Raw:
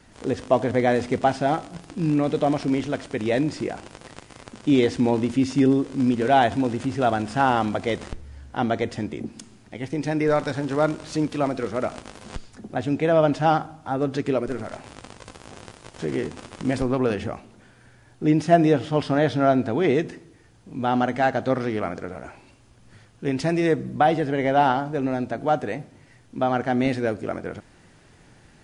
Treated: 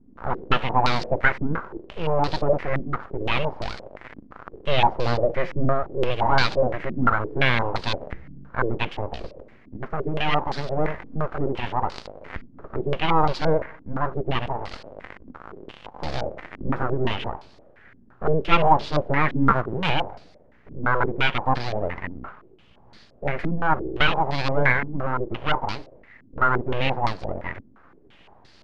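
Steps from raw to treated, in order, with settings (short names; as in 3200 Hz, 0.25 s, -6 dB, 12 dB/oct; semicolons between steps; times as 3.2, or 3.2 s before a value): 19.49–19.9 cycle switcher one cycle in 2, muted; full-wave rectifier; stepped low-pass 5.8 Hz 260–4500 Hz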